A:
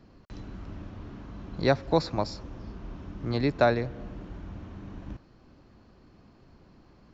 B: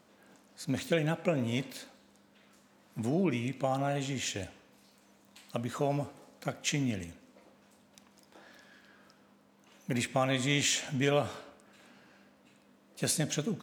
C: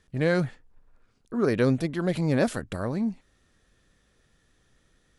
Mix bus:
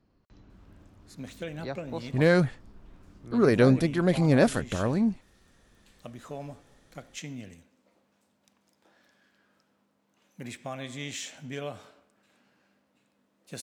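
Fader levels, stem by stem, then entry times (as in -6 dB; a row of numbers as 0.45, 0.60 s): -13.5, -8.5, +2.5 dB; 0.00, 0.50, 2.00 s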